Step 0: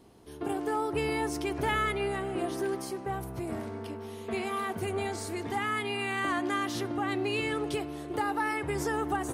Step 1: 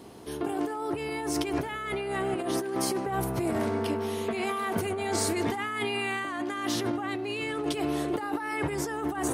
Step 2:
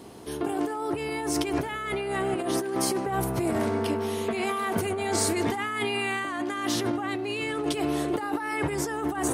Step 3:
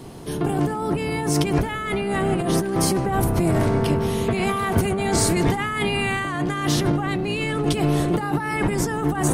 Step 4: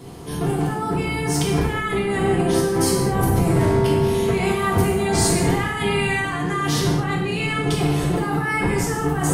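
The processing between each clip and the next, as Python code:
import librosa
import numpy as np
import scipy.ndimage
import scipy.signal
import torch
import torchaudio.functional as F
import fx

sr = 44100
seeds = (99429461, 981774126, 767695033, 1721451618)

y1 = fx.highpass(x, sr, hz=130.0, slope=6)
y1 = fx.over_compress(y1, sr, threshold_db=-37.0, ratio=-1.0)
y1 = y1 * 10.0 ** (6.5 / 20.0)
y2 = fx.peak_eq(y1, sr, hz=8300.0, db=2.0, octaves=0.77)
y2 = y2 * 10.0 ** (2.0 / 20.0)
y3 = fx.octave_divider(y2, sr, octaves=1, level_db=3.0)
y3 = y3 * 10.0 ** (4.5 / 20.0)
y4 = fx.rev_gated(y3, sr, seeds[0], gate_ms=260, shape='falling', drr_db=-3.0)
y4 = y4 * 10.0 ** (-3.0 / 20.0)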